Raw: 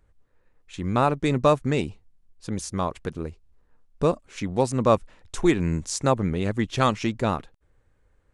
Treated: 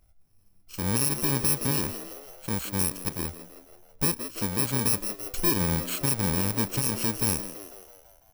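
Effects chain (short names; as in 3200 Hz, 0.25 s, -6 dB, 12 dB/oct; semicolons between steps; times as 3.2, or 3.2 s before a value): FFT order left unsorted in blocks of 64 samples; frequency-shifting echo 0.165 s, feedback 57%, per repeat +93 Hz, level -15 dB; limiter -15 dBFS, peak gain reduction 10 dB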